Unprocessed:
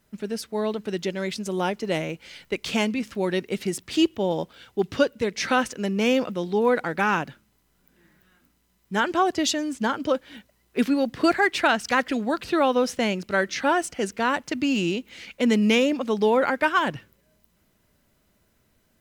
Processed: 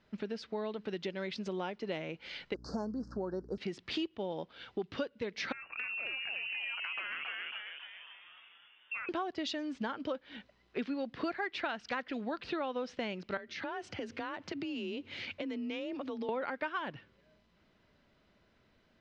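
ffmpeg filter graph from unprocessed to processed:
-filter_complex "[0:a]asettb=1/sr,asplit=3[s0][s1][s2];[s0]atrim=end=2.544[s3];[s1]atrim=start=2.54:end=3.58,asetpts=PTS-STARTPTS,afade=t=in:d=0.004:c=qsin,afade=t=out:st=1.036:d=0.004:c=qsin,equalizer=f=2400:w=1.5:g=-7,aeval=exprs='val(0)+0.01*(sin(2*PI*60*n/s)+sin(2*PI*2*60*n/s)/2+sin(2*PI*3*60*n/s)/3+sin(2*PI*4*60*n/s)/4+sin(2*PI*5*60*n/s)/5)':c=same,asuperstop=centerf=2700:order=12:qfactor=0.89[s4];[s2]atrim=start=3.576[s5];[s3][s4]acrossfade=d=0.004:c1=hsin:c2=qsin[s6];[s6][s5]acrossfade=d=0.004:c1=qsin:c2=hsin,asettb=1/sr,asplit=3[s7][s8][s9];[s7]atrim=end=5.524[s10];[s8]atrim=start=5.52:end=9.09,asetpts=PTS-STARTPTS,afade=t=in:d=0.004:c=qsin,afade=t=out:st=3.566:d=0.004:c=qsin,lowpass=f=2500:t=q:w=0.5098,lowpass=f=2500:t=q:w=0.6013,lowpass=f=2500:t=q:w=0.9,lowpass=f=2500:t=q:w=2.563,afreqshift=-2900,acompressor=threshold=0.02:ratio=6:attack=3.2:release=140:knee=1:detection=peak,asplit=8[s11][s12][s13][s14][s15][s16][s17][s18];[s12]adelay=273,afreqshift=130,volume=0.708[s19];[s13]adelay=546,afreqshift=260,volume=0.355[s20];[s14]adelay=819,afreqshift=390,volume=0.178[s21];[s15]adelay=1092,afreqshift=520,volume=0.0881[s22];[s16]adelay=1365,afreqshift=650,volume=0.0442[s23];[s17]adelay=1638,afreqshift=780,volume=0.0221[s24];[s18]adelay=1911,afreqshift=910,volume=0.0111[s25];[s11][s19][s20][s21][s22][s23][s24][s25]amix=inputs=8:normalize=0,atrim=end_sample=157437[s26];[s9]atrim=start=9.086[s27];[s10][s26]acrossfade=d=0.004:c1=hsin:c2=qsin[s28];[s28][s27]acrossfade=d=0.004:c1=qsin:c2=hsin,asettb=1/sr,asplit=3[s29][s30][s31];[s29]atrim=end=13.374[s32];[s30]atrim=start=13.37:end=16.29,asetpts=PTS-STARTPTS,afade=t=in:d=0.004:c=qsin,afade=t=out:st=2.916:d=0.004:c=qsin,equalizer=f=67:w=0.66:g=10,acompressor=threshold=0.0224:ratio=4:attack=3.2:release=140:knee=1:detection=peak,afreqshift=32[s33];[s31]atrim=start=16.286[s34];[s32][s33]acrossfade=d=0.004:c1=hsin:c2=qsin[s35];[s35][s34]acrossfade=d=0.004:c1=qsin:c2=hsin,lowpass=f=4500:w=0.5412,lowpass=f=4500:w=1.3066,lowshelf=f=180:g=-6,acompressor=threshold=0.0158:ratio=4"

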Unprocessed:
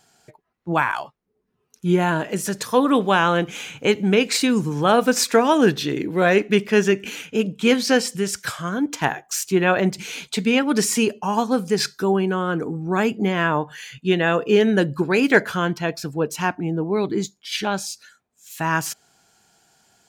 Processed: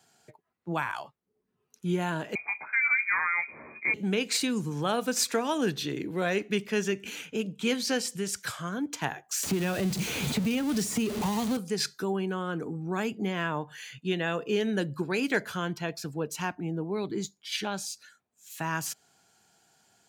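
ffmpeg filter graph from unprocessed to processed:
-filter_complex "[0:a]asettb=1/sr,asplit=3[s0][s1][s2];[s0]atrim=end=2.354[s3];[s1]atrim=start=2.35:end=3.94,asetpts=PTS-STARTPTS,afade=t=in:d=0.004:c=qsin,afade=t=out:st=1.586:d=0.004:c=qsin,lowpass=f=2200:t=q:w=0.5098,lowpass=f=2200:t=q:w=0.6013,lowpass=f=2200:t=q:w=0.9,lowpass=f=2200:t=q:w=2.563,afreqshift=-2600,lowshelf=f=120:g=-11,asplit=2[s4][s5];[s5]adelay=13,volume=0.473[s6];[s4][s6]amix=inputs=2:normalize=0,atrim=end_sample=70119[s7];[s2]atrim=start=3.936[s8];[s3][s7]acrossfade=d=0.004:c1=hsin:c2=qsin[s9];[s9][s8]acrossfade=d=0.004:c1=qsin:c2=hsin,asettb=1/sr,asplit=3[s10][s11][s12];[s10]atrim=end=9.434[s13];[s11]atrim=start=9.43:end=11.57,asetpts=PTS-STARTPTS,afade=t=in:d=0.004:c=qsin,afade=t=out:st=2.136:d=0.004:c=qsin,aeval=exprs='val(0)+0.5*0.112*sgn(val(0))':c=same,lowshelf=f=410:g=11.5,acrossover=split=100|1900[s14][s15][s16];[s14]acompressor=threshold=0.0178:ratio=4[s17];[s15]acompressor=threshold=0.141:ratio=4[s18];[s16]acompressor=threshold=0.0398:ratio=4[s19];[s17][s18][s19]amix=inputs=3:normalize=0[s20];[s12]atrim=start=11.566[s21];[s13][s20]acrossfade=d=0.004:c1=hsin:c2=qsin[s22];[s22][s21]acrossfade=d=0.004:c1=qsin:c2=hsin,acrossover=split=130|3000[s23][s24][s25];[s24]acompressor=threshold=0.0282:ratio=1.5[s26];[s23][s26][s25]amix=inputs=3:normalize=0,highpass=69,bandreject=f=5300:w=30,volume=0.531"

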